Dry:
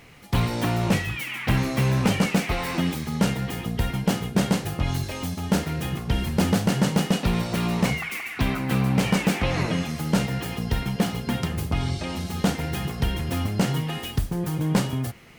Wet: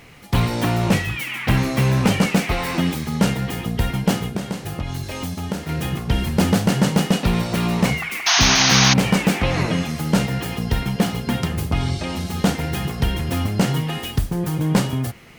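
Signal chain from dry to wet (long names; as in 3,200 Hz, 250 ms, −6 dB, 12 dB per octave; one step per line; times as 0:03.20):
0:04.28–0:05.69: downward compressor 6 to 1, threshold −27 dBFS, peak gain reduction 11 dB
0:08.26–0:08.94: sound drawn into the spectrogram noise 640–6,700 Hz −20 dBFS
level +4 dB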